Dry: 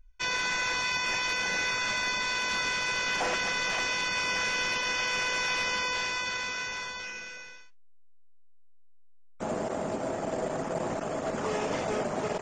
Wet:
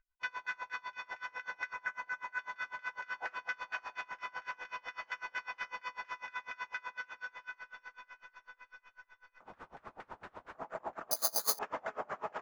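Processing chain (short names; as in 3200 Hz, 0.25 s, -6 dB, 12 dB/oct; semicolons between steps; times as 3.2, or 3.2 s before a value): pre-emphasis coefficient 0.97; vocal rider within 4 dB 2 s; 1.73–2.39 band shelf 3600 Hz -14.5 dB 1.2 oct; 9.44–10.55 wrapped overs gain 44 dB; LFO low-pass saw down 4.3 Hz 790–1600 Hz; on a send: diffused feedback echo 0.688 s, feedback 57%, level -7 dB; 11.11–11.59 on the sum: careless resampling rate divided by 8×, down filtered, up zero stuff; dB-linear tremolo 8 Hz, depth 28 dB; gain +7.5 dB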